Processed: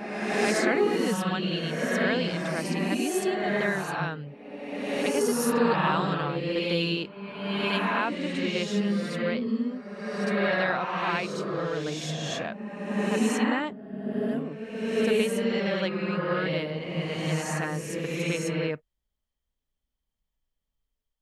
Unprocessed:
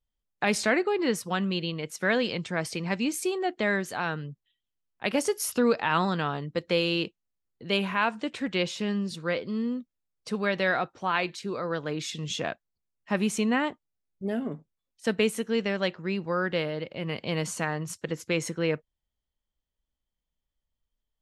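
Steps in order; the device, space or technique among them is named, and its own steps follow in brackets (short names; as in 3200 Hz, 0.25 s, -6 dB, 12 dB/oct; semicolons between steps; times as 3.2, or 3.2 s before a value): reverse reverb (reverse; reverb RT60 1.8 s, pre-delay 40 ms, DRR -2.5 dB; reverse); gain -3.5 dB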